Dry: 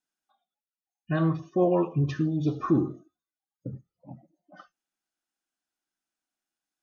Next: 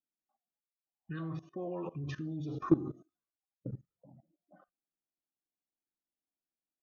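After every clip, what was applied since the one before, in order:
output level in coarse steps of 19 dB
low-pass that shuts in the quiet parts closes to 560 Hz, open at −36 dBFS
healed spectral selection 0:00.99–0:01.20, 520–1,100 Hz both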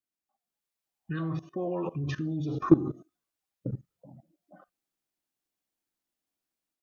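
automatic gain control gain up to 7 dB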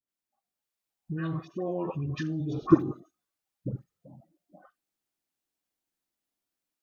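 all-pass dispersion highs, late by 87 ms, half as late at 960 Hz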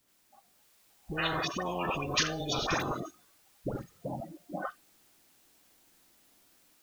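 every bin compressed towards the loudest bin 10 to 1
level −9 dB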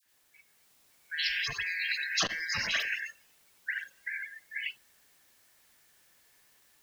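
band-splitting scrambler in four parts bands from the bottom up 4123
all-pass dispersion lows, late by 56 ms, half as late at 1,300 Hz
saturating transformer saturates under 630 Hz

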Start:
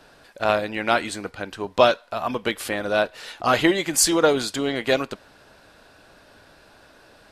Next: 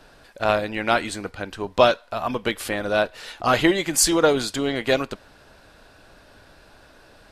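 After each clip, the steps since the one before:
low-shelf EQ 69 Hz +10.5 dB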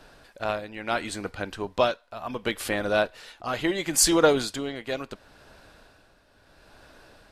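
amplitude tremolo 0.72 Hz, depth 68%
level −1 dB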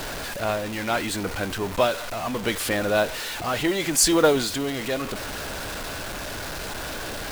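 converter with a step at zero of −27 dBFS
noise that follows the level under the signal 23 dB

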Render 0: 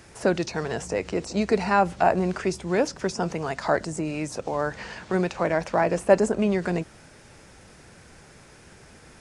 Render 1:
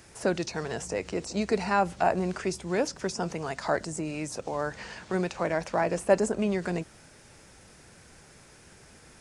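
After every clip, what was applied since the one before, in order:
high-shelf EQ 5,000 Hz +6 dB
level −4.5 dB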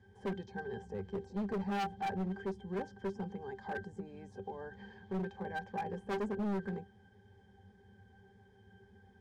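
resonances in every octave G, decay 0.13 s
hard clipping −35.5 dBFS, distortion −5 dB
level +3 dB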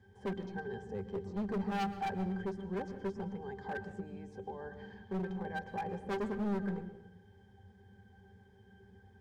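on a send at −13.5 dB: low-shelf EQ 410 Hz +11 dB + convolution reverb RT60 0.80 s, pre-delay 107 ms

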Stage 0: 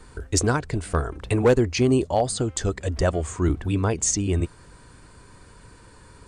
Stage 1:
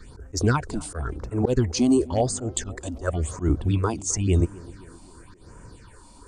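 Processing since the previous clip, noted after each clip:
all-pass phaser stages 6, 0.94 Hz, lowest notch 110–4,000 Hz
volume swells 135 ms
tape delay 260 ms, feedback 68%, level −18 dB, low-pass 1,000 Hz
level +2.5 dB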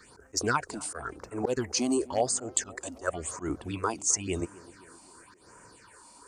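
high-pass filter 860 Hz 6 dB per octave
parametric band 3,500 Hz −7 dB 0.48 octaves
level +1.5 dB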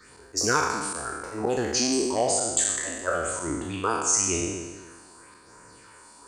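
peak hold with a decay on every bin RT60 1.28 s

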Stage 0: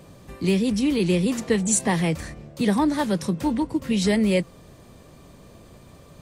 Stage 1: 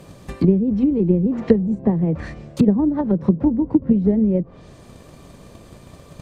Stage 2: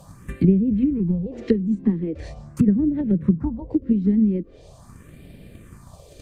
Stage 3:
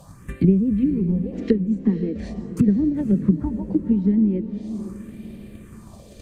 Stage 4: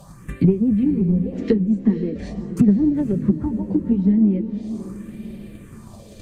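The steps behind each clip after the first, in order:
transient designer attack +8 dB, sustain +1 dB; treble cut that deepens with the level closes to 400 Hz, closed at −16.5 dBFS; level +3.5 dB
all-pass phaser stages 4, 0.42 Hz, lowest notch 100–1,100 Hz; dynamic equaliser 740 Hz, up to −6 dB, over −37 dBFS, Q 1.1
feedback delay with all-pass diffusion 509 ms, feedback 41%, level −11.5 dB
flanger 0.38 Hz, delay 4.9 ms, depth 6.8 ms, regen −39%; in parallel at −12 dB: soft clipping −18 dBFS, distortion −14 dB; on the sum: level +4 dB

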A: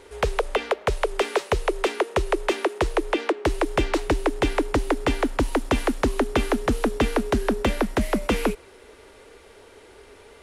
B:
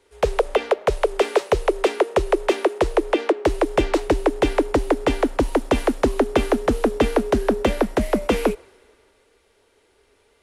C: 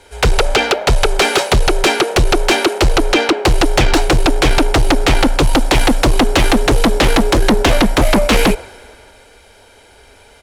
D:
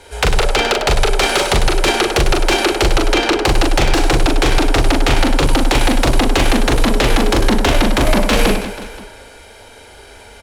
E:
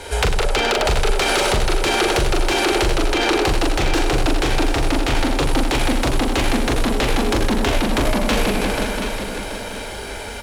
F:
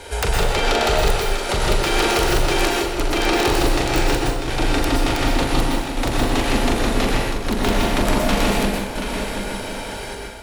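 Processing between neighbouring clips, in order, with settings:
dynamic equaliser 550 Hz, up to +6 dB, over −35 dBFS, Q 0.83; multiband upward and downward expander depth 40%
comb filter 1.3 ms, depth 54%; in parallel at −5 dB: sine wavefolder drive 16 dB, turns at −4 dBFS
downward compressor 3 to 1, threshold −18 dBFS, peak gain reduction 7.5 dB; on a send: reverse bouncing-ball delay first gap 40 ms, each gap 1.5×, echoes 5; on the sum: level +3 dB
brickwall limiter −12 dBFS, peak gain reduction 10.5 dB; downward compressor 3 to 1, threshold −25 dBFS, peak gain reduction 8 dB; feedback echo at a low word length 730 ms, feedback 35%, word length 9 bits, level −8.5 dB; level +8 dB
square-wave tremolo 0.67 Hz, depth 60%, duty 80%; wrap-around overflow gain 8.5 dB; dense smooth reverb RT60 0.71 s, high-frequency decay 0.8×, pre-delay 105 ms, DRR −1 dB; level −3.5 dB

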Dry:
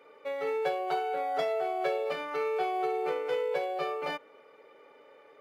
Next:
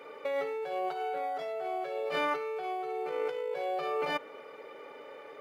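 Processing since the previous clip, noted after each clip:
compressor whose output falls as the input rises −37 dBFS, ratio −1
level +3 dB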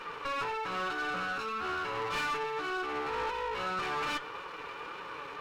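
lower of the sound and its delayed copy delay 0.74 ms
flanger 1.8 Hz, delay 5.2 ms, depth 2.2 ms, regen +55%
mid-hump overdrive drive 21 dB, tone 4,000 Hz, clips at −26 dBFS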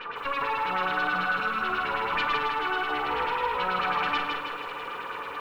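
auto-filter low-pass sine 9.2 Hz 810–3,800 Hz
on a send at −9 dB: convolution reverb RT60 0.50 s, pre-delay 4 ms
on the sum: feedback echo at a low word length 158 ms, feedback 55%, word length 10 bits, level −3.5 dB
level +1.5 dB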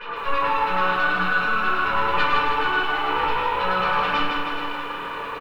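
on a send: single-tap delay 419 ms −10.5 dB
on the sum: rectangular room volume 560 cubic metres, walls furnished, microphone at 5 metres
level −2.5 dB

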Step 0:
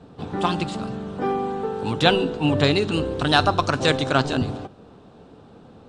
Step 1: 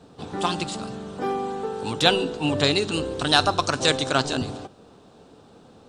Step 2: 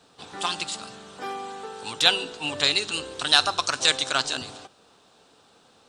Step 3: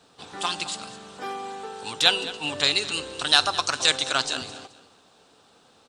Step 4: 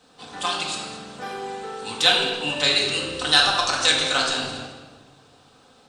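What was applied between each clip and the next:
bass and treble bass −4 dB, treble +10 dB; level −2 dB
tilt shelving filter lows −9 dB, about 720 Hz; level −6 dB
repeating echo 214 ms, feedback 27%, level −16.5 dB
rectangular room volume 870 cubic metres, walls mixed, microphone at 2 metres; level −1 dB

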